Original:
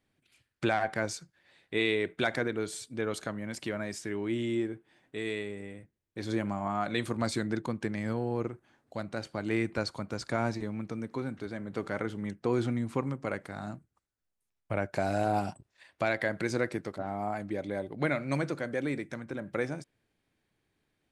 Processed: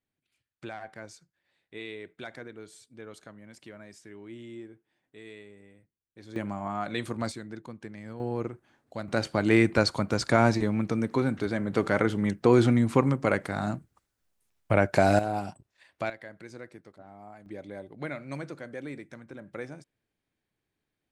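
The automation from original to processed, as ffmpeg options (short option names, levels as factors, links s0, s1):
-af "asetnsamples=n=441:p=0,asendcmd='6.36 volume volume -1dB;7.32 volume volume -9dB;8.2 volume volume 0.5dB;9.08 volume volume 9dB;15.19 volume volume -2dB;16.1 volume volume -14dB;17.46 volume volume -6.5dB',volume=0.251"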